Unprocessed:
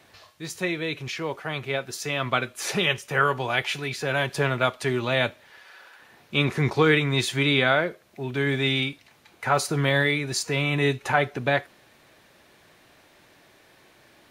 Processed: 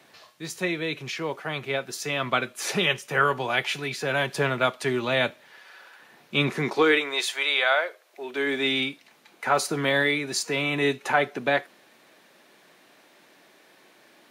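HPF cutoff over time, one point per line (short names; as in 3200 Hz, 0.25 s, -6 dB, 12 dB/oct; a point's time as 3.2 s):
HPF 24 dB/oct
6.46 s 140 Hz
7.31 s 550 Hz
7.88 s 550 Hz
8.82 s 180 Hz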